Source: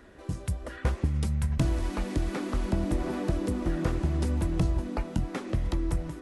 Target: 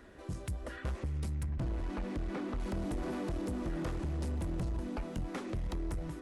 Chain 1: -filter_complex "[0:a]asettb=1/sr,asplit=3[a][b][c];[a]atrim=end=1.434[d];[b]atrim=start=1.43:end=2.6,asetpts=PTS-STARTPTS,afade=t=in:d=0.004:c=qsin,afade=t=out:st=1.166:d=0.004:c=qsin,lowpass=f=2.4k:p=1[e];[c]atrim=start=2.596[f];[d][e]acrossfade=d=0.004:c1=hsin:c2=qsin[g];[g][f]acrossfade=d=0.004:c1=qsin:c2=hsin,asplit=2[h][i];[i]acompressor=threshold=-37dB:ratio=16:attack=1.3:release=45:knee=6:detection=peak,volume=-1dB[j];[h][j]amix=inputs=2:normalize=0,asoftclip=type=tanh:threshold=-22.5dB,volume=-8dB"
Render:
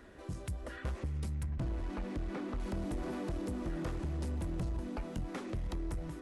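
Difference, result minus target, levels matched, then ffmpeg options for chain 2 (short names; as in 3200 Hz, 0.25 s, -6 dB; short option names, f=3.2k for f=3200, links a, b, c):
compressor: peak gain reduction +9 dB
-filter_complex "[0:a]asettb=1/sr,asplit=3[a][b][c];[a]atrim=end=1.434[d];[b]atrim=start=1.43:end=2.6,asetpts=PTS-STARTPTS,afade=t=in:d=0.004:c=qsin,afade=t=out:st=1.166:d=0.004:c=qsin,lowpass=f=2.4k:p=1[e];[c]atrim=start=2.596[f];[d][e]acrossfade=d=0.004:c1=hsin:c2=qsin[g];[g][f]acrossfade=d=0.004:c1=qsin:c2=hsin,asplit=2[h][i];[i]acompressor=threshold=-27.5dB:ratio=16:attack=1.3:release=45:knee=6:detection=peak,volume=-1dB[j];[h][j]amix=inputs=2:normalize=0,asoftclip=type=tanh:threshold=-22.5dB,volume=-8dB"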